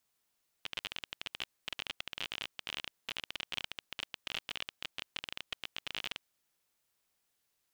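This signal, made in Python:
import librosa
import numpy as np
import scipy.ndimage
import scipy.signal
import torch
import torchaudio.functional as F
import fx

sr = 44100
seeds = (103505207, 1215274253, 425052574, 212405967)

y = fx.geiger_clicks(sr, seeds[0], length_s=5.59, per_s=27.0, level_db=-20.5)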